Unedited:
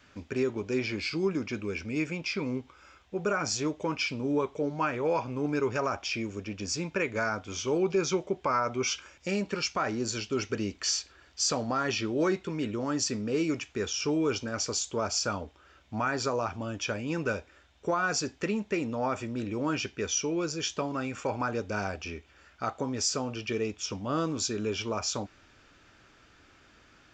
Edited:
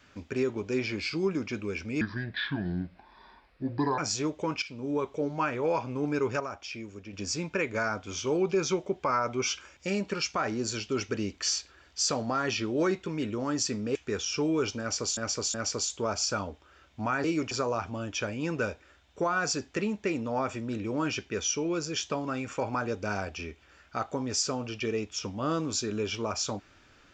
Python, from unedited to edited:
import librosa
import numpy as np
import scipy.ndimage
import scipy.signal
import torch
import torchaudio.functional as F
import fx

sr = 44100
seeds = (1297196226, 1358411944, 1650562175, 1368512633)

y = fx.edit(x, sr, fx.speed_span(start_s=2.01, length_s=1.38, speed=0.7),
    fx.fade_in_from(start_s=4.03, length_s=0.64, curve='qsin', floor_db=-13.5),
    fx.clip_gain(start_s=5.81, length_s=0.73, db=-7.0),
    fx.move(start_s=13.36, length_s=0.27, to_s=16.18),
    fx.repeat(start_s=14.48, length_s=0.37, count=3), tone=tone)